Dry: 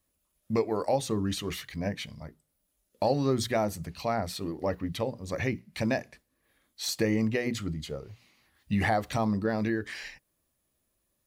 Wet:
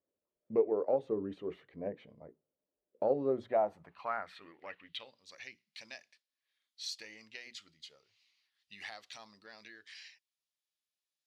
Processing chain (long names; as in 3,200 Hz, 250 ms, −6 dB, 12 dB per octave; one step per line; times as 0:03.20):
high shelf with overshoot 4,200 Hz −6.5 dB, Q 1.5
harmonic generator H 2 −17 dB, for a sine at −12.5 dBFS
band-pass filter sweep 450 Hz → 5,200 Hz, 0:03.22–0:05.34